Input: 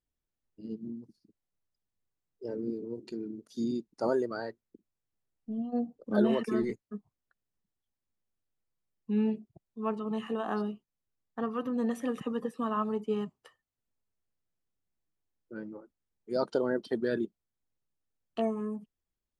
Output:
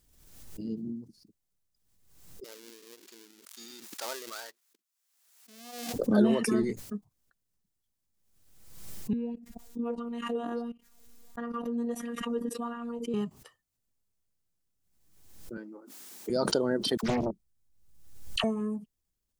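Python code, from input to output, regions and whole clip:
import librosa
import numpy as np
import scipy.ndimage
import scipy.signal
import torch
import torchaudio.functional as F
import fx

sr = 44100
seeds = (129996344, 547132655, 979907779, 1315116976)

y = fx.chain(x, sr, fx.dead_time(dead_ms=0.13),
    fx.highpass(hz=1100.0, slope=12), at=(2.44, 5.94))
y = fx.chain(y, sr, fx.level_steps(step_db=19),
    fx.robotise(hz=236.0),
    fx.bell_lfo(hz=1.5, low_hz=300.0, high_hz=2000.0, db=12), at=(9.13, 13.14))
y = fx.chain(y, sr, fx.highpass(hz=270.0, slope=24),
    fx.peak_eq(hz=510.0, db=-5.0, octaves=0.94), at=(15.57, 16.3))
y = fx.chain(y, sr, fx.low_shelf(hz=92.0, db=11.5),
    fx.dispersion(late='lows', ms=63.0, hz=1000.0),
    fx.doppler_dist(depth_ms=0.82), at=(16.97, 18.44))
y = fx.bass_treble(y, sr, bass_db=5, treble_db=8)
y = fx.pre_swell(y, sr, db_per_s=51.0)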